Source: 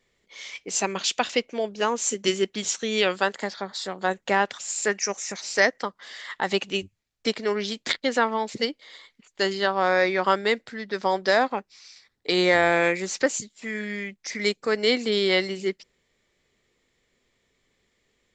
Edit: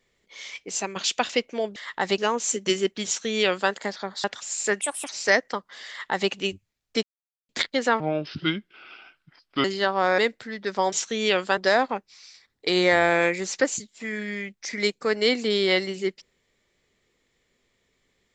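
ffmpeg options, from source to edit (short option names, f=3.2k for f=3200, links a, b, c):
-filter_complex "[0:a]asplit=14[a][b][c][d][e][f][g][h][i][j][k][l][m][n];[a]atrim=end=0.96,asetpts=PTS-STARTPTS,afade=t=out:st=0.56:d=0.4:silence=0.446684[o];[b]atrim=start=0.96:end=1.762,asetpts=PTS-STARTPTS,afade=t=in:d=0.004:c=hsin:silence=0.446684[p];[c]atrim=start=6.178:end=6.602[q];[d]atrim=start=1.758:end=3.822[r];[e]atrim=start=4.418:end=4.994[s];[f]atrim=start=4.99:end=5.39,asetpts=PTS-STARTPTS,asetrate=63063,aresample=44100[t];[g]atrim=start=5.386:end=7.33,asetpts=PTS-STARTPTS,afade=t=out:st=1.94:d=0.004:c=hsin[u];[h]atrim=start=7.33:end=7.79,asetpts=PTS-STARTPTS,volume=0[v];[i]atrim=start=7.79:end=8.304,asetpts=PTS-STARTPTS,afade=t=in:d=0.004:c=hsin[w];[j]atrim=start=8.3:end=9.45,asetpts=PTS-STARTPTS,asetrate=30870,aresample=44100[x];[k]atrim=start=9.446:end=9.992[y];[l]atrim=start=10.448:end=11.192[z];[m]atrim=start=2.638:end=3.292[aa];[n]atrim=start=11.188[ab];[o][p]concat=n=2:v=0:a=1[ac];[ac][q]acrossfade=d=0.004:c1=hsin:c2=hsin[ad];[ad][r]acrossfade=d=0.004:c1=hsin:c2=hsin[ae];[ae][s]acrossfade=d=0.004:c1=hsin:c2=hsin[af];[af][t]acrossfade=d=0.004:c1=hsin:c2=hsin[ag];[u][v][w]concat=n=3:v=0:a=1[ah];[ag][ah]acrossfade=d=0.004:c1=hsin:c2=hsin[ai];[ai][x]acrossfade=d=0.004:c1=hsin:c2=hsin[aj];[aj][y]acrossfade=d=0.004:c1=hsin:c2=hsin[ak];[ak][z]acrossfade=d=0.004:c1=hsin:c2=hsin[al];[al][aa]acrossfade=d=0.004:c1=hsin:c2=hsin[am];[am][ab]acrossfade=d=0.004:c1=hsin:c2=hsin"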